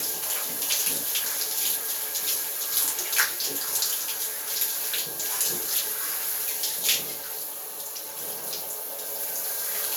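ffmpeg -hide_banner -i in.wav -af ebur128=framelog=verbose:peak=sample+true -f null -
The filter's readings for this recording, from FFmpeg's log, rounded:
Integrated loudness:
  I:         -25.3 LUFS
  Threshold: -35.3 LUFS
Loudness range:
  LRA:         3.7 LU
  Threshold: -45.1 LUFS
  LRA low:   -27.6 LUFS
  LRA high:  -23.9 LUFS
Sample peak:
  Peak:       -6.7 dBFS
True peak:
  Peak:       -6.5 dBFS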